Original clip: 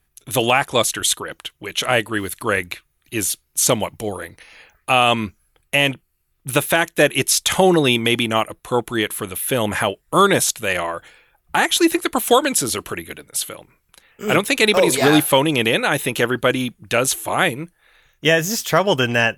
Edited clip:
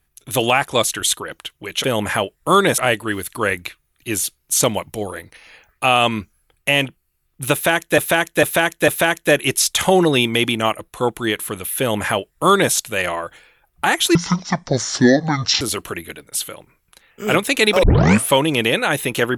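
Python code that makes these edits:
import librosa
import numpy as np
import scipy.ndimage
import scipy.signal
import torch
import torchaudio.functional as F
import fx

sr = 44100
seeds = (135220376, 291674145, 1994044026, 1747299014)

y = fx.edit(x, sr, fx.repeat(start_s=6.59, length_s=0.45, count=4),
    fx.duplicate(start_s=9.5, length_s=0.94, to_s=1.84),
    fx.speed_span(start_s=11.86, length_s=0.76, speed=0.52),
    fx.tape_start(start_s=14.84, length_s=0.46), tone=tone)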